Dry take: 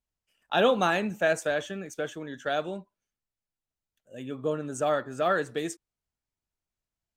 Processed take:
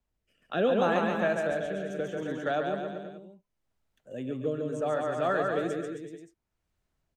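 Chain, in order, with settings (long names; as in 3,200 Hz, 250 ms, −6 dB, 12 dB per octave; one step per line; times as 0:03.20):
high-shelf EQ 2,800 Hz −11.5 dB
bouncing-ball delay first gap 140 ms, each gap 0.9×, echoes 5
rotating-speaker cabinet horn 0.7 Hz
multiband upward and downward compressor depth 40%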